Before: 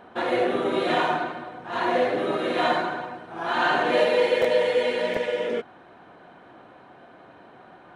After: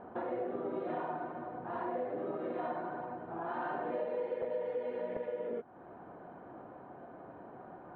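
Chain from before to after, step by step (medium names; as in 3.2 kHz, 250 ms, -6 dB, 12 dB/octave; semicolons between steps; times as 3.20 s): low-pass 1 kHz 12 dB/octave; compression 3:1, threshold -39 dBFS, peak gain reduction 16.5 dB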